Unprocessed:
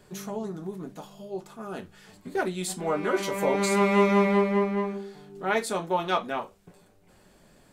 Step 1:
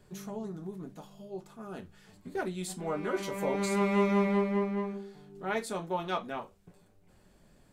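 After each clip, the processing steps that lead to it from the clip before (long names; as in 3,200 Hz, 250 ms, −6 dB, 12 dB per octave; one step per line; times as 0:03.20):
low-shelf EQ 180 Hz +8 dB
level −7.5 dB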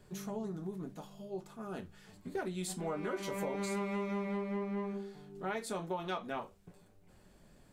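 downward compressor 10 to 1, threshold −33 dBFS, peak gain reduction 12 dB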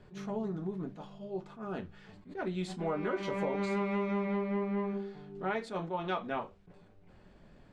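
low-pass filter 3,400 Hz 12 dB per octave
level that may rise only so fast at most 190 dB per second
level +4 dB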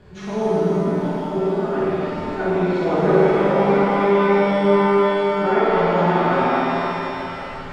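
flutter between parallel walls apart 9 metres, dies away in 0.88 s
treble cut that deepens with the level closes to 1,700 Hz, closed at −29.5 dBFS
reverb with rising layers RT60 3.8 s, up +7 semitones, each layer −8 dB, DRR −7.5 dB
level +7 dB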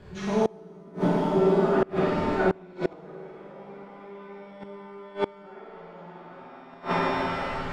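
gate with flip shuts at −11 dBFS, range −27 dB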